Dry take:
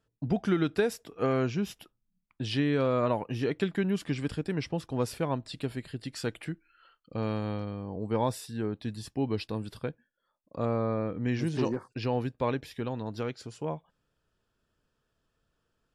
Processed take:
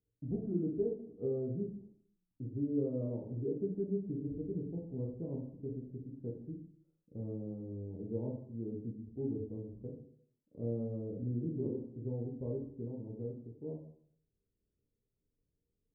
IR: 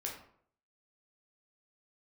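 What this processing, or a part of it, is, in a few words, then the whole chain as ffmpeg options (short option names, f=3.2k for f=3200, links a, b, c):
next room: -filter_complex "[0:a]lowpass=f=430:w=0.5412,lowpass=f=430:w=1.3066[a];[1:a]atrim=start_sample=2205[b];[a][b]afir=irnorm=-1:irlink=0,volume=-6dB"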